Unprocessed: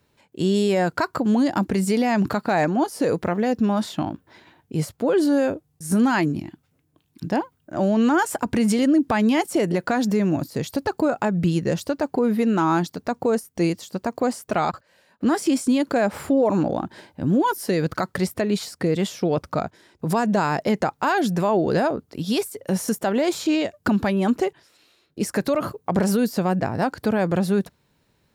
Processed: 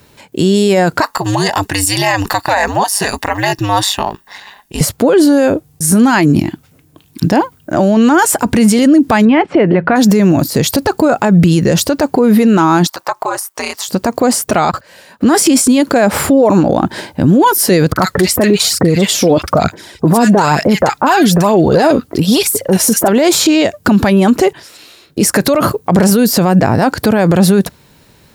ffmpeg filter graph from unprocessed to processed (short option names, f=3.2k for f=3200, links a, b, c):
-filter_complex "[0:a]asettb=1/sr,asplit=3[a][b][c];[a]atrim=end=1.024[d];[b]atrim=start=1.02:end=4.81,asetpts=PTS-STARTPTS,afade=t=in:d=0.004:c=qsin,afade=t=out:st=3.786:d=0.004:c=qsin,highpass=f=1.2k:p=1,aecho=1:1:1.1:0.93,atrim=end_sample=167139,aeval=exprs='val(0)*sin(2*PI*100*n/s)':c=same[e];[c]atrim=start=4.806[f];[d][e]acrossfade=d=0.004:c1=hsin:c2=qsin[g];[g][f]acrossfade=d=0.004:c1=qsin:c2=hsin,asettb=1/sr,asplit=3[h][i][j];[h]atrim=end=9.254[k];[i]atrim=start=9.25:end=9.96,asetpts=PTS-STARTPTS,afade=t=in:d=0.004:c=qsin,afade=t=out:st=0.706:d=0.004:c=qsin,lowpass=f=2.6k:w=0.5412,lowpass=f=2.6k:w=1.3066,bandreject=f=56.17:t=h:w=4,bandreject=f=112.34:t=h:w=4,bandreject=f=168.51:t=h:w=4[l];[j]atrim=start=9.956[m];[k][l]acrossfade=d=0.004:c1=hsin:c2=qsin[n];[n][m]acrossfade=d=0.004:c1=qsin:c2=hsin,asettb=1/sr,asplit=3[o][p][q];[o]atrim=end=12.874[r];[p]atrim=start=12.87:end=13.88,asetpts=PTS-STARTPTS,afade=t=in:d=0.004:c=qsin,afade=t=out:st=1.006:d=0.004:c=qsin,highpass=f=940:t=q:w=3.1,aeval=exprs='val(0)*sin(2*PI*99*n/s)':c=same,acompressor=threshold=-37dB:ratio=2:attack=3.2:release=140:knee=1:detection=peak[s];[q]atrim=start=13.876[t];[r][s]acrossfade=d=0.004:c1=hsin:c2=qsin[u];[u][t]acrossfade=d=0.004:c1=qsin:c2=hsin,asettb=1/sr,asplit=3[v][w][x];[v]atrim=end=17.924[y];[w]atrim=start=17.92:end=23.08,asetpts=PTS-STARTPTS,afade=t=in:d=0.004:c=qsin,afade=t=out:st=5.156:d=0.004:c=qsin,acrossover=split=1500[z][aa];[aa]adelay=40[ab];[z][ab]amix=inputs=2:normalize=0,atrim=end_sample=227556,aphaser=in_gain=1:out_gain=1:delay=4.1:decay=0.45:speed=1.1:type=triangular[ac];[x]atrim=start=23.076[ad];[y][ac]acrossfade=d=0.004:c1=hsin:c2=qsin[ae];[ae][ad]acrossfade=d=0.004:c1=qsin:c2=hsin,highshelf=f=5.3k:g=5,alimiter=level_in=19.5dB:limit=-1dB:release=50:level=0:latency=1,volume=-1dB"